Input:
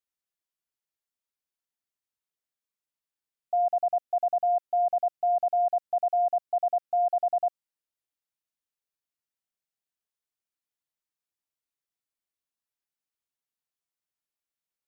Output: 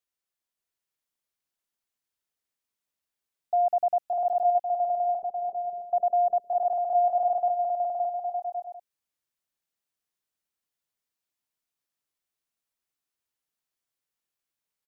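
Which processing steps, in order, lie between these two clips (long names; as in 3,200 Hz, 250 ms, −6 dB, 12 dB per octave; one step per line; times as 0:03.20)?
0:04.61–0:05.80: Butterworth low-pass 500 Hz 48 dB per octave
bouncing-ball delay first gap 570 ms, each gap 0.6×, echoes 5
level +1.5 dB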